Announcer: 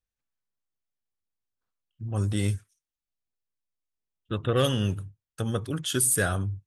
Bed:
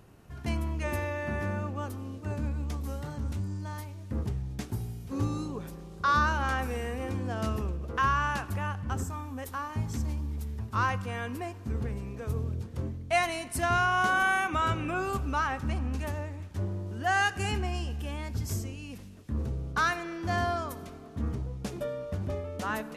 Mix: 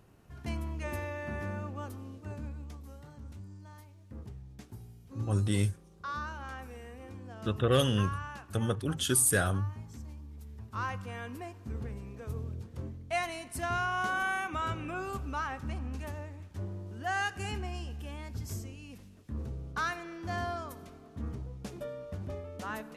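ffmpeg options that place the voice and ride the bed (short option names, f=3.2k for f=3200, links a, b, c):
-filter_complex "[0:a]adelay=3150,volume=-2dB[a];[1:a]volume=2dB,afade=t=out:st=1.95:d=0.91:silence=0.398107,afade=t=in:st=10.31:d=0.74:silence=0.446684[b];[a][b]amix=inputs=2:normalize=0"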